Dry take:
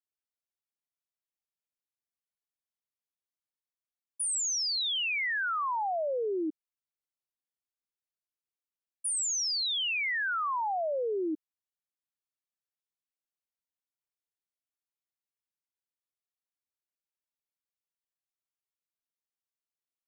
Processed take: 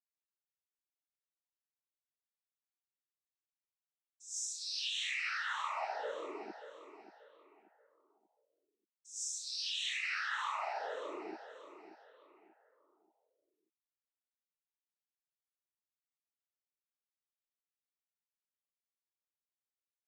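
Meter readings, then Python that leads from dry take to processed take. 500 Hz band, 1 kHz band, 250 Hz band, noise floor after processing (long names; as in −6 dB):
−11.5 dB, −8.0 dB, −15.5 dB, below −85 dBFS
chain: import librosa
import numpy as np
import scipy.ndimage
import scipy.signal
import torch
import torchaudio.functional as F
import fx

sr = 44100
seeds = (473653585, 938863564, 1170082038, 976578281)

y = scipy.signal.sosfilt(scipy.signal.bessel(2, 670.0, 'highpass', norm='mag', fs=sr, output='sos'), x)
y = fx.peak_eq(y, sr, hz=5600.0, db=-8.0, octaves=0.4)
y = fx.noise_vocoder(y, sr, seeds[0], bands=12)
y = fx.echo_feedback(y, sr, ms=584, feedback_pct=34, wet_db=-11.5)
y = y * librosa.db_to_amplitude(-6.5)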